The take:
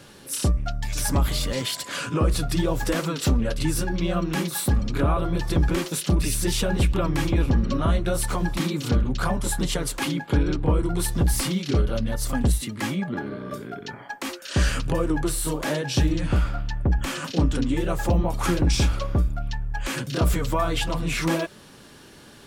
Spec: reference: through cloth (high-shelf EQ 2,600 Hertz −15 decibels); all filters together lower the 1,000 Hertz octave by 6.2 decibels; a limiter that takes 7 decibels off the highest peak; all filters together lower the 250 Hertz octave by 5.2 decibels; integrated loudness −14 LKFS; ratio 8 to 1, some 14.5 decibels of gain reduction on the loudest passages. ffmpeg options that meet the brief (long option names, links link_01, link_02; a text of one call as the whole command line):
ffmpeg -i in.wav -af "equalizer=frequency=250:width_type=o:gain=-7.5,equalizer=frequency=1000:width_type=o:gain=-5,acompressor=threshold=-33dB:ratio=8,alimiter=level_in=4.5dB:limit=-24dB:level=0:latency=1,volume=-4.5dB,highshelf=frequency=2600:gain=-15,volume=26.5dB" out.wav